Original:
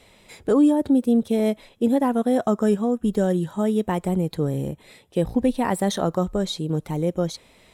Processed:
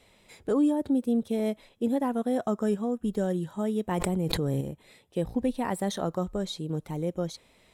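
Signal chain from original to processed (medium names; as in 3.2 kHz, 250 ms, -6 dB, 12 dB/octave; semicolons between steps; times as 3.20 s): 3.91–4.61 s: level flattener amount 100%; trim -7 dB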